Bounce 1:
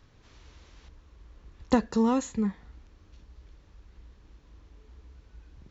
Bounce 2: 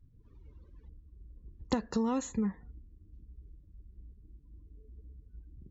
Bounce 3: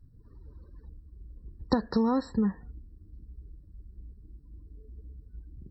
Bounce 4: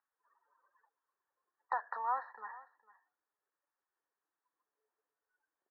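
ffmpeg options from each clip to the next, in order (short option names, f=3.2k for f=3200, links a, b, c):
-af "afftdn=nr=30:nf=-53,acompressor=threshold=-27dB:ratio=6"
-af "afftfilt=real='re*eq(mod(floor(b*sr/1024/1900),2),0)':imag='im*eq(mod(floor(b*sr/1024/1900),2),0)':win_size=1024:overlap=0.75,volume=5dB"
-af "asuperpass=centerf=1300:order=8:qfactor=0.84,aecho=1:1:451:0.106,volume=1dB"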